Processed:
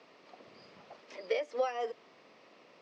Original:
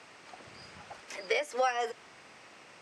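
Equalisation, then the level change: cabinet simulation 260–4500 Hz, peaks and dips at 340 Hz -3 dB, 820 Hz -7 dB, 1.5 kHz -7 dB; peaking EQ 2.4 kHz -10.5 dB 2.4 oct; +2.5 dB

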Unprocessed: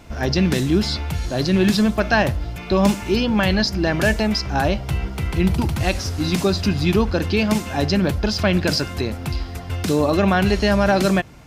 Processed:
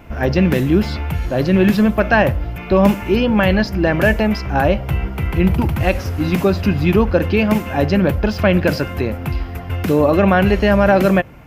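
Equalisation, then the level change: high-order bell 5.9 kHz -12 dB; dynamic bell 530 Hz, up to +7 dB, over -41 dBFS, Q 7.4; +3.5 dB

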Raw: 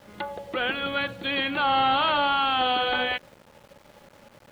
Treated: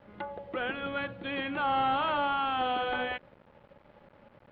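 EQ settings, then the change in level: distance through air 430 m; -3.5 dB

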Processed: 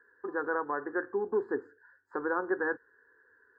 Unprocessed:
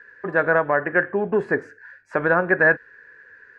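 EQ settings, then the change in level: boxcar filter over 15 samples; high-pass 120 Hz 6 dB/octave; static phaser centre 620 Hz, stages 6; -6.5 dB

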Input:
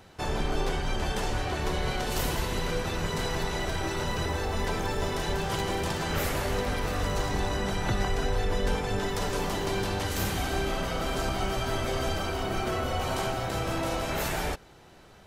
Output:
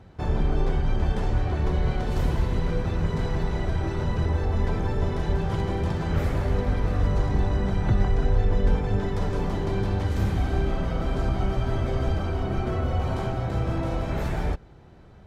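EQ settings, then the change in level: high-pass 76 Hz 6 dB/octave; RIAA curve playback; band-stop 2.8 kHz, Q 17; -2.5 dB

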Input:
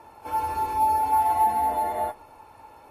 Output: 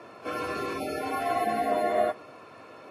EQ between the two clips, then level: high-pass 130 Hz 24 dB/octave; Butterworth band-stop 870 Hz, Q 3.7; low-pass 5.6 kHz 12 dB/octave; +7.0 dB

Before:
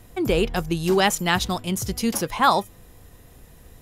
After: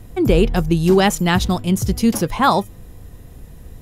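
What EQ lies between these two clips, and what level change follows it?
bass shelf 390 Hz +10 dB; +1.0 dB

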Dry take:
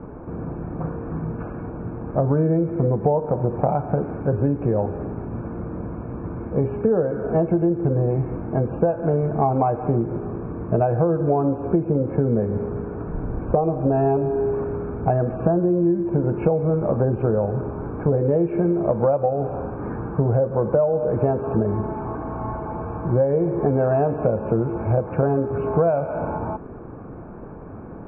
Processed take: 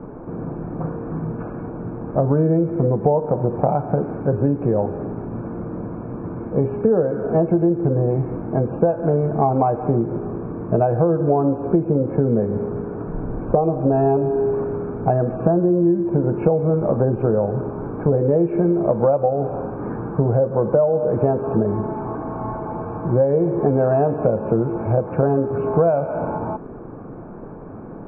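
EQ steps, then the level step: peaking EQ 66 Hz -14 dB 0.72 oct; treble shelf 2.2 kHz -9 dB; +3.0 dB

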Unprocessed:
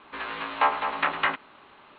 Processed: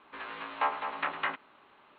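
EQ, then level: distance through air 100 m; bass shelf 130 Hz -6.5 dB; -6.5 dB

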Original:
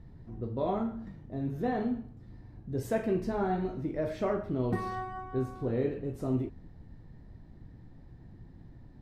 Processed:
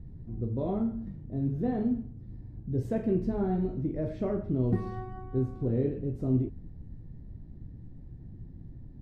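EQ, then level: low-pass 3.3 kHz 6 dB/octave; peaking EQ 1.1 kHz -13 dB 2.6 oct; treble shelf 2.1 kHz -10.5 dB; +6.5 dB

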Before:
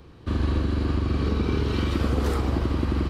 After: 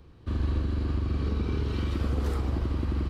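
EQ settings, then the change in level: bass shelf 110 Hz +7.5 dB; -8.0 dB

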